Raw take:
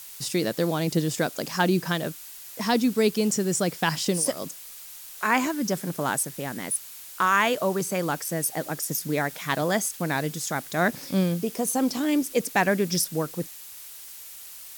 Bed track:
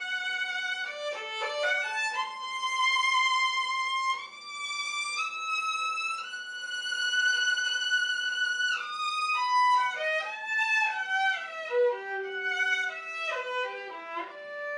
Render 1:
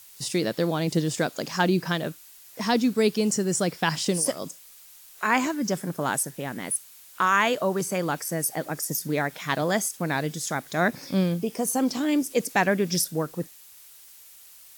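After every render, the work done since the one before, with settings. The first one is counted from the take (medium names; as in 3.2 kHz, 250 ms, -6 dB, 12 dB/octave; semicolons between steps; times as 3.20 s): noise print and reduce 7 dB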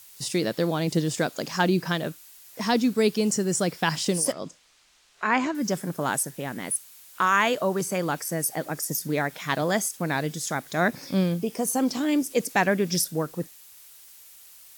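4.32–5.55 s: distance through air 110 m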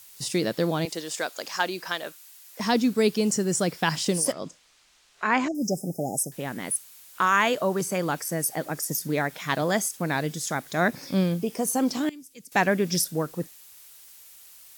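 0.85–2.60 s: Bessel high-pass 670 Hz; 5.48–6.32 s: brick-wall FIR band-stop 830–4900 Hz; 12.09–12.52 s: amplifier tone stack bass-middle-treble 6-0-2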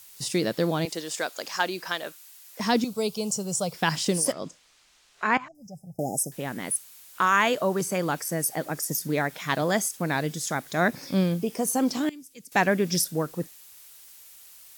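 2.84–3.74 s: static phaser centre 740 Hz, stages 4; 5.37–5.99 s: FFT filter 120 Hz 0 dB, 320 Hz -30 dB, 1.1 kHz -5 dB, 6.2 kHz -21 dB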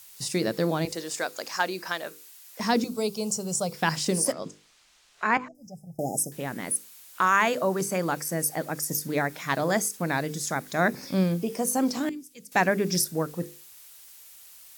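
hum notches 50/100/150/200/250/300/350/400/450/500 Hz; dynamic bell 3.2 kHz, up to -6 dB, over -49 dBFS, Q 3.4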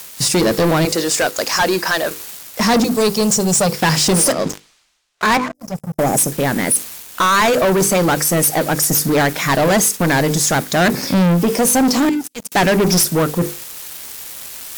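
waveshaping leveller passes 5; reverse; upward compressor, threshold -21 dBFS; reverse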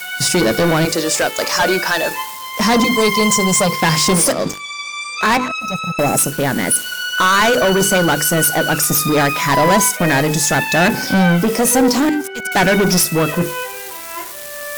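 add bed track +6 dB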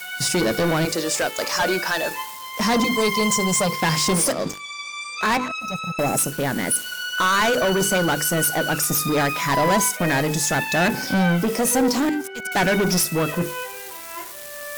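trim -6 dB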